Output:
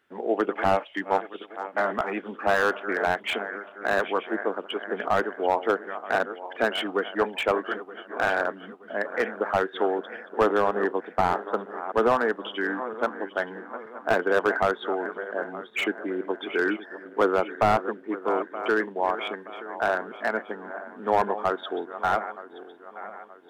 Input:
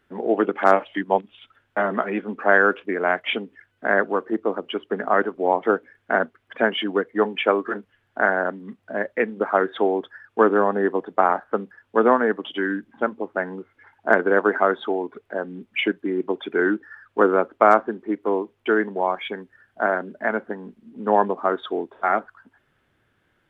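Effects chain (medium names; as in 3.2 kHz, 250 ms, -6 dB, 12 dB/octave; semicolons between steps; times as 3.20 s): backward echo that repeats 462 ms, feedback 64%, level -13.5 dB; high-pass 420 Hz 6 dB/octave; slew-rate limiter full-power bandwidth 190 Hz; trim -1.5 dB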